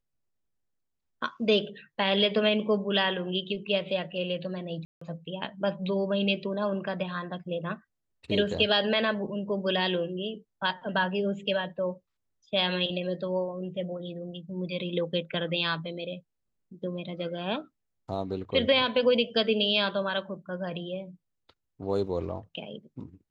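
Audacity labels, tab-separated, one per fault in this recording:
4.850000	5.010000	drop-out 164 ms

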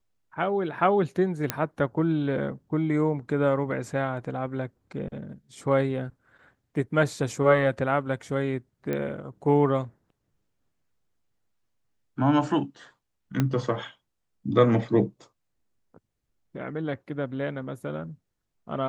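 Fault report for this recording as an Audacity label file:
1.500000	1.500000	click −8 dBFS
8.930000	8.930000	click −17 dBFS
13.400000	13.400000	click −11 dBFS

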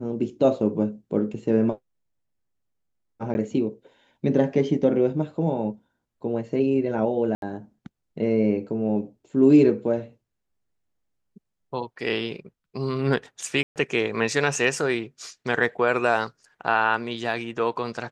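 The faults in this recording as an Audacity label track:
3.340000	3.350000	drop-out 10 ms
7.350000	7.420000	drop-out 72 ms
13.630000	13.760000	drop-out 128 ms

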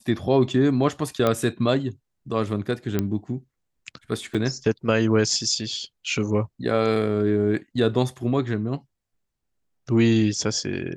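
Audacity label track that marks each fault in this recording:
1.270000	1.270000	click −9 dBFS
2.990000	2.990000	click −10 dBFS
4.340000	4.350000	drop-out 6.1 ms

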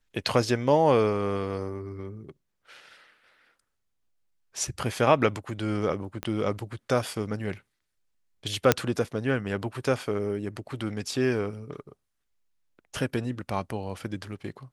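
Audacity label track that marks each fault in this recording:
6.230000	6.230000	click −17 dBFS
8.720000	8.720000	click −3 dBFS

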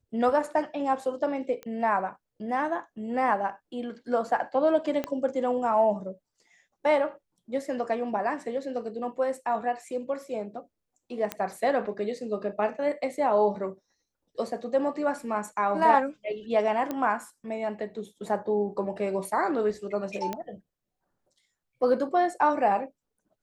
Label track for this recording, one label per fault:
1.630000	1.630000	click −24 dBFS
5.040000	5.040000	click −16 dBFS
11.320000	11.320000	click −14 dBFS
16.910000	16.910000	click −17 dBFS
20.330000	20.330000	click −17 dBFS

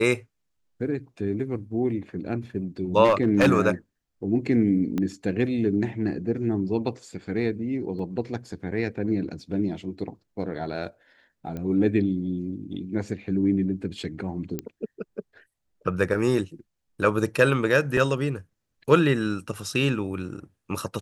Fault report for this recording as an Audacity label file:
3.040000	3.480000	clipping −13.5 dBFS
4.980000	4.980000	click −16 dBFS
7.990000	7.990000	drop-out 3.5 ms
11.570000	11.570000	click −22 dBFS
14.590000	14.590000	click −15 dBFS
17.970000	17.970000	drop-out 2.7 ms

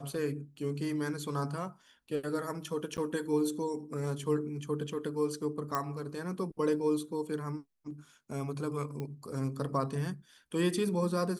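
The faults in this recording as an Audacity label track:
2.970000	2.980000	drop-out 9.4 ms
5.750000	5.750000	click −17 dBFS
9.000000	9.000000	click −26 dBFS

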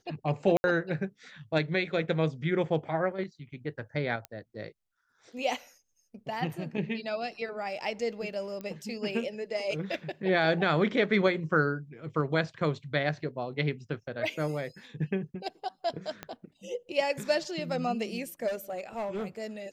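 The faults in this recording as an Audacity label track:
0.570000	0.640000	drop-out 70 ms
4.250000	4.250000	click −22 dBFS
8.610000	8.610000	click −26 dBFS
16.230000	16.230000	click −22 dBFS
18.470000	19.260000	clipping −29.5 dBFS

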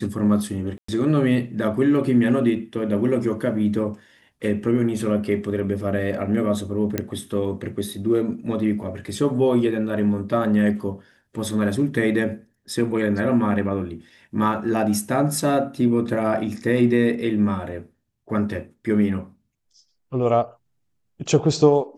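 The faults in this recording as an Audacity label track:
0.780000	0.880000	drop-out 104 ms
6.980000	6.980000	click −9 dBFS

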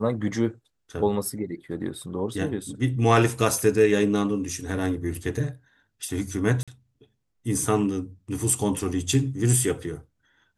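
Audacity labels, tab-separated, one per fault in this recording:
6.630000	6.680000	drop-out 46 ms

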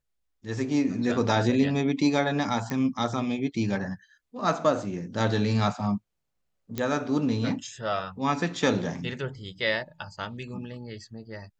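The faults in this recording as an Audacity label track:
2.700000	2.700000	click −18 dBFS
6.780000	6.780000	click −15 dBFS

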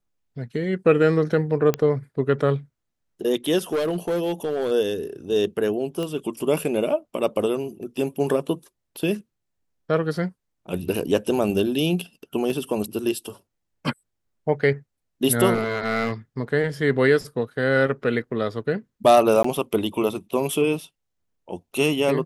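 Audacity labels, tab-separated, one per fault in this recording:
1.740000	1.740000	click −9 dBFS
3.720000	4.720000	clipping −19.5 dBFS
6.030000	6.030000	click −17 dBFS
12.500000	12.500000	drop-out 2.4 ms
15.530000	16.120000	clipping −18 dBFS
19.430000	19.440000	drop-out 14 ms

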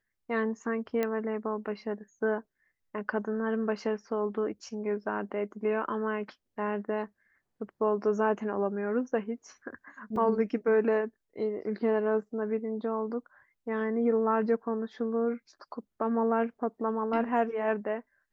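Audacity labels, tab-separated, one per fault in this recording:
1.030000	1.030000	click −17 dBFS
10.160000	10.160000	drop-out 2.9 ms

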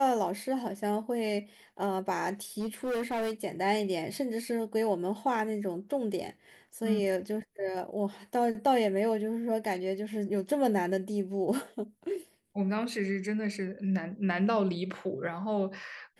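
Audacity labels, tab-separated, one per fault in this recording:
2.590000	3.310000	clipping −28.5 dBFS

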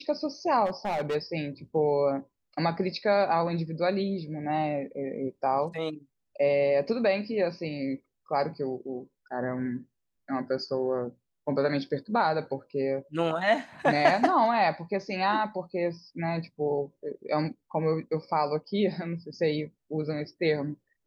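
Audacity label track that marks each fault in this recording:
0.650000	1.160000	clipping −25.5 dBFS

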